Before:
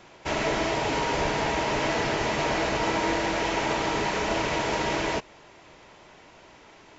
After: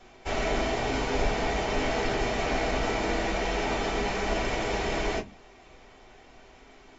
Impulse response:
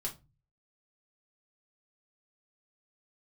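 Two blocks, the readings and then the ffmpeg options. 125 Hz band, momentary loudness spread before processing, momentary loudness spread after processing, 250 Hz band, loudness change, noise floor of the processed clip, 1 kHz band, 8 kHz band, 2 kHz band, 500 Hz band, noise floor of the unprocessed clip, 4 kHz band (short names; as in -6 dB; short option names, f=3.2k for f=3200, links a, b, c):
-0.5 dB, 1 LU, 2 LU, -2.0 dB, -2.5 dB, -53 dBFS, -3.5 dB, n/a, -3.0 dB, -1.5 dB, -52 dBFS, -3.0 dB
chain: -filter_complex "[1:a]atrim=start_sample=2205,asetrate=79380,aresample=44100[a];[0:a][a]afir=irnorm=-1:irlink=0,volume=2dB"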